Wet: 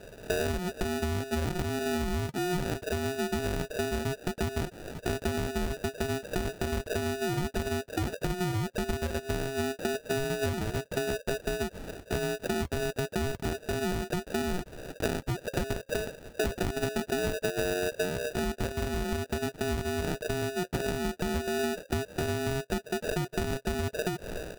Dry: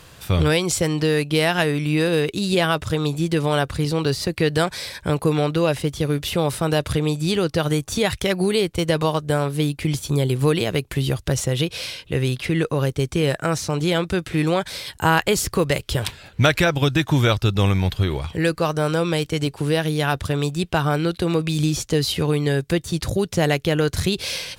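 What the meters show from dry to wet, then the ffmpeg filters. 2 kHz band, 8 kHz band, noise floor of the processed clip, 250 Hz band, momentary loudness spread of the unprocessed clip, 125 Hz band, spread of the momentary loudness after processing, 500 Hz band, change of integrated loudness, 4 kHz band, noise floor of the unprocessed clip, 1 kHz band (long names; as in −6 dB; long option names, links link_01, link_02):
−9.5 dB, −10.0 dB, −54 dBFS, −11.0 dB, 5 LU, −13.5 dB, 3 LU, −9.5 dB, −10.5 dB, −13.0 dB, −47 dBFS, −10.0 dB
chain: -af "lowpass=frequency=2300:width_type=q:width=0.5098,lowpass=frequency=2300:width_type=q:width=0.6013,lowpass=frequency=2300:width_type=q:width=0.9,lowpass=frequency=2300:width_type=q:width=2.563,afreqshift=-2700,acrusher=samples=41:mix=1:aa=0.000001,acompressor=threshold=-29dB:ratio=4"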